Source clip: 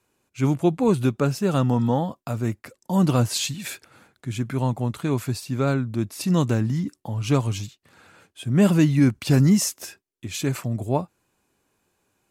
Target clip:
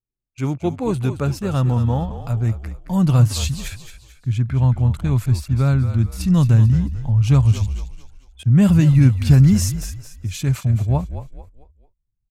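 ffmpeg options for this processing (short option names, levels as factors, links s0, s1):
-filter_complex "[0:a]asettb=1/sr,asplit=3[s0][s1][s2];[s0]atrim=end=3.684[s3];[s1]atrim=start=3.68:end=4.7,asetpts=PTS-STARTPTS,afade=t=in:d=0.004:c=qsin,afade=t=out:st=1.016:d=0.004:c=qsin,highshelf=f=9100:g=-11.5[s4];[s2]atrim=start=4.696[s5];[s3][s4]acrossfade=d=0.004:c1=hsin:c2=qsin[s6];[s6][s5]acrossfade=d=0.004:c1=qsin:c2=hsin,anlmdn=0.398,asubboost=boost=10:cutoff=110,asplit=5[s7][s8][s9][s10][s11];[s8]adelay=221,afreqshift=-44,volume=0.282[s12];[s9]adelay=442,afreqshift=-88,volume=0.11[s13];[s10]adelay=663,afreqshift=-132,volume=0.0427[s14];[s11]adelay=884,afreqshift=-176,volume=0.0168[s15];[s7][s12][s13][s14][s15]amix=inputs=5:normalize=0,volume=0.891"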